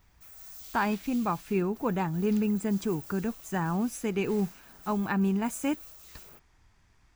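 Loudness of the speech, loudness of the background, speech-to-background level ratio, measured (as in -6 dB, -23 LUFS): -30.0 LUFS, -47.0 LUFS, 17.0 dB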